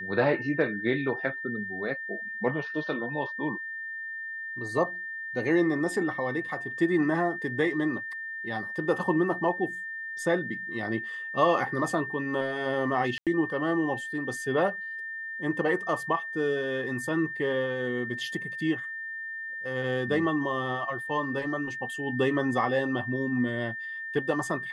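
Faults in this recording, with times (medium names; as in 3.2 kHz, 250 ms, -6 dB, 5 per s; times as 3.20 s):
whine 1.8 kHz -34 dBFS
13.18–13.27 s: dropout 87 ms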